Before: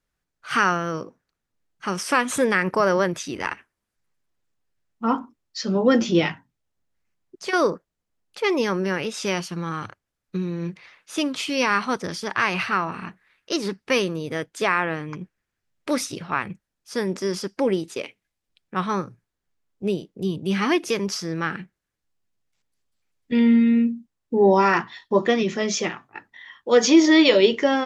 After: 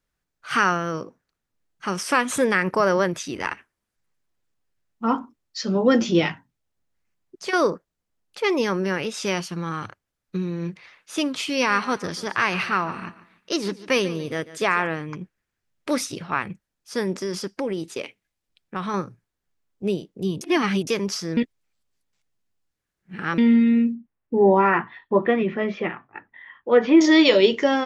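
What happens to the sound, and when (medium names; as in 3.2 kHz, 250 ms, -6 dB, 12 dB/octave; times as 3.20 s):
11.54–14.87 s: feedback delay 144 ms, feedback 32%, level -16.5 dB
17.16–18.94 s: compression 4:1, threshold -23 dBFS
20.41–20.87 s: reverse
21.37–23.38 s: reverse
23.95–27.01 s: low-pass 2.5 kHz 24 dB/octave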